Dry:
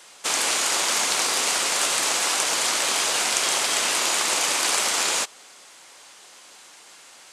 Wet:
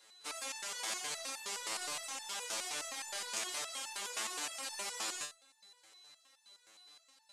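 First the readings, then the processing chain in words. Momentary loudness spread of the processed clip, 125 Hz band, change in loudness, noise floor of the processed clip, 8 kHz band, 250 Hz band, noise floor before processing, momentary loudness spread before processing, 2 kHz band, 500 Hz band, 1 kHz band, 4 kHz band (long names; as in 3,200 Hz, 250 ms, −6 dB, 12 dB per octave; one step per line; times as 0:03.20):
21 LU, can't be measured, −18.5 dB, −70 dBFS, −18.5 dB, −18.5 dB, −49 dBFS, 1 LU, −18.5 dB, −18.5 dB, −18.5 dB, −18.5 dB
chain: steady tone 4,000 Hz −44 dBFS
step-sequenced resonator 9.6 Hz 110–890 Hz
level −5 dB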